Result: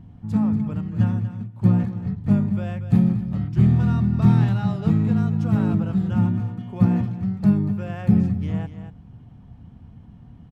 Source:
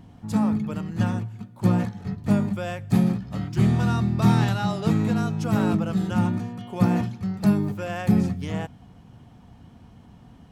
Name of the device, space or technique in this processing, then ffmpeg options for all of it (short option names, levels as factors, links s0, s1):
ducked delay: -filter_complex "[0:a]asplit=3[s0][s1][s2];[s1]adelay=237,volume=0.376[s3];[s2]apad=whole_len=473971[s4];[s3][s4]sidechaincompress=threshold=0.0794:ratio=8:attack=32:release=1250[s5];[s0][s5]amix=inputs=2:normalize=0,bass=f=250:g=11,treble=f=4000:g=-9,volume=0.531"